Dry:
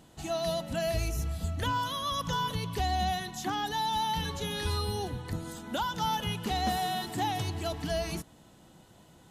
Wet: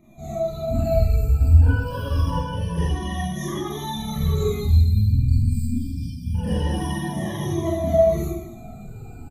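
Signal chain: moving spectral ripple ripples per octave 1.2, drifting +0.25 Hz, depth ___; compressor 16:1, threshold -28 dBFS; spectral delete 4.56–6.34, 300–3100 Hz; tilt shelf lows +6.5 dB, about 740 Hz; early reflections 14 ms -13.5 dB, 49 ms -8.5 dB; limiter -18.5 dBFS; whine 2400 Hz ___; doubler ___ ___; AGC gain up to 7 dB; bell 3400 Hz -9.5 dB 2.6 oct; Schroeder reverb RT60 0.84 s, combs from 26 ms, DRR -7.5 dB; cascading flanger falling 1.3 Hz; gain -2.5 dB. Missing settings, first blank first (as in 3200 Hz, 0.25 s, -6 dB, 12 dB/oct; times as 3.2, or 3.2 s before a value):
23 dB, -53 dBFS, 49 ms, -11.5 dB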